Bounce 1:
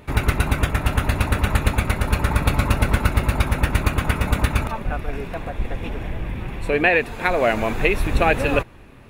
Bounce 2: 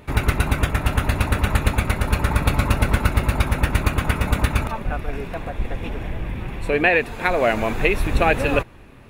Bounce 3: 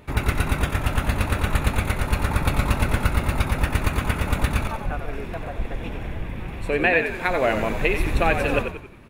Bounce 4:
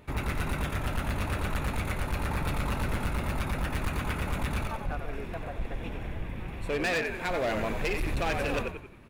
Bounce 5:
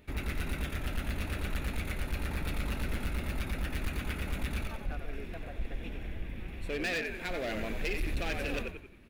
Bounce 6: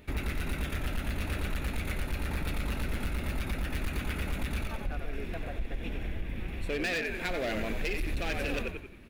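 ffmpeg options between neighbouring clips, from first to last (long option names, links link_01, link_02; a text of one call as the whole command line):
ffmpeg -i in.wav -af anull out.wav
ffmpeg -i in.wav -filter_complex "[0:a]asplit=6[link_01][link_02][link_03][link_04][link_05][link_06];[link_02]adelay=91,afreqshift=-54,volume=-7.5dB[link_07];[link_03]adelay=182,afreqshift=-108,volume=-14.6dB[link_08];[link_04]adelay=273,afreqshift=-162,volume=-21.8dB[link_09];[link_05]adelay=364,afreqshift=-216,volume=-28.9dB[link_10];[link_06]adelay=455,afreqshift=-270,volume=-36dB[link_11];[link_01][link_07][link_08][link_09][link_10][link_11]amix=inputs=6:normalize=0,volume=-3dB" out.wav
ffmpeg -i in.wav -af "volume=19.5dB,asoftclip=hard,volume=-19.5dB,volume=-5.5dB" out.wav
ffmpeg -i in.wav -af "equalizer=frequency=125:width_type=o:width=1:gain=-8,equalizer=frequency=500:width_type=o:width=1:gain=-3,equalizer=frequency=1000:width_type=o:width=1:gain=-11,equalizer=frequency=8000:width_type=o:width=1:gain=-4,volume=-1dB" out.wav
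ffmpeg -i in.wav -af "acompressor=threshold=-33dB:ratio=6,volume=5dB" out.wav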